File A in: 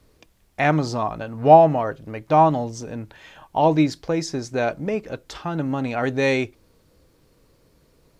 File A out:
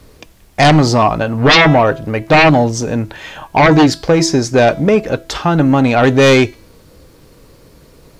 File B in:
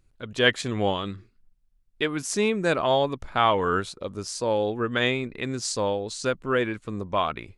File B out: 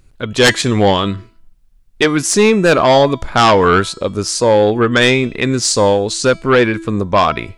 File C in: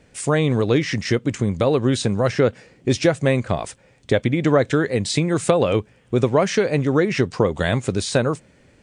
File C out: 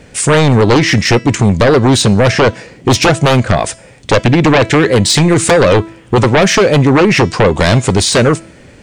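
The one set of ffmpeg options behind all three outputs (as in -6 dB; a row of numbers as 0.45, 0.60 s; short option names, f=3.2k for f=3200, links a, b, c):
-af "aeval=exprs='0.891*sin(PI/2*5.01*val(0)/0.891)':c=same,bandreject=f=329.3:t=h:w=4,bandreject=f=658.6:t=h:w=4,bandreject=f=987.9:t=h:w=4,bandreject=f=1.3172k:t=h:w=4,bandreject=f=1.6465k:t=h:w=4,bandreject=f=1.9758k:t=h:w=4,bandreject=f=2.3051k:t=h:w=4,bandreject=f=2.6344k:t=h:w=4,bandreject=f=2.9637k:t=h:w=4,bandreject=f=3.293k:t=h:w=4,bandreject=f=3.6223k:t=h:w=4,bandreject=f=3.9516k:t=h:w=4,bandreject=f=4.2809k:t=h:w=4,bandreject=f=4.6102k:t=h:w=4,bandreject=f=4.9395k:t=h:w=4,bandreject=f=5.2688k:t=h:w=4,bandreject=f=5.5981k:t=h:w=4,bandreject=f=5.9274k:t=h:w=4,bandreject=f=6.2567k:t=h:w=4,bandreject=f=6.586k:t=h:w=4,bandreject=f=6.9153k:t=h:w=4,bandreject=f=7.2446k:t=h:w=4,bandreject=f=7.5739k:t=h:w=4,bandreject=f=7.9032k:t=h:w=4,bandreject=f=8.2325k:t=h:w=4,bandreject=f=8.5618k:t=h:w=4,bandreject=f=8.8911k:t=h:w=4,bandreject=f=9.2204k:t=h:w=4,volume=-3dB"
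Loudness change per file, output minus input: +9.0, +12.5, +10.0 LU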